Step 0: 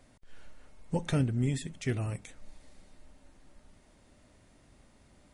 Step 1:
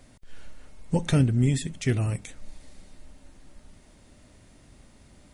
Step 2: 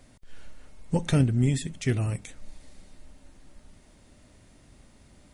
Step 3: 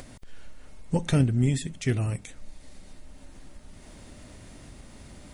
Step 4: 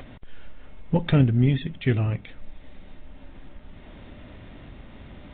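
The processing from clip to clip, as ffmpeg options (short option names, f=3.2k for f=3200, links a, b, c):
-af "equalizer=f=890:t=o:w=2.9:g=-4,volume=8dB"
-af "aeval=exprs='0.355*(cos(1*acos(clip(val(0)/0.355,-1,1)))-cos(1*PI/2))+0.0178*(cos(3*acos(clip(val(0)/0.355,-1,1)))-cos(3*PI/2))':c=same"
-af "acompressor=mode=upward:threshold=-36dB:ratio=2.5"
-af "volume=3.5dB" -ar 8000 -c:a adpcm_g726 -b:a 40k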